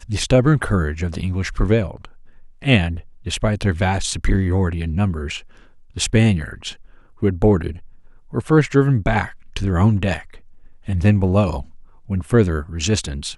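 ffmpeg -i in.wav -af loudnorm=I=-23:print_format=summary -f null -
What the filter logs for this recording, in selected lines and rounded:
Input Integrated:    -19.6 LUFS
Input True Peak:      -3.0 dBTP
Input LRA:             2.2 LU
Input Threshold:     -30.5 LUFS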